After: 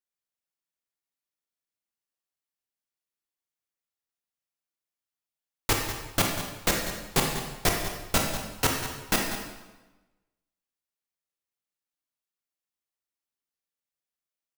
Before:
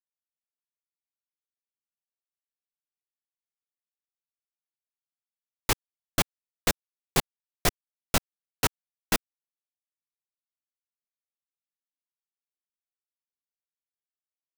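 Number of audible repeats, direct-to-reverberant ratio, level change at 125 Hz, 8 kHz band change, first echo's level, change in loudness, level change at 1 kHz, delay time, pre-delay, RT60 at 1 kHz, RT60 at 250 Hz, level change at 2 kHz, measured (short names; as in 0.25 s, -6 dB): 1, 0.5 dB, +2.5 dB, +2.5 dB, -12.0 dB, +2.0 dB, +2.5 dB, 0.194 s, 24 ms, 1.1 s, 1.2 s, +3.0 dB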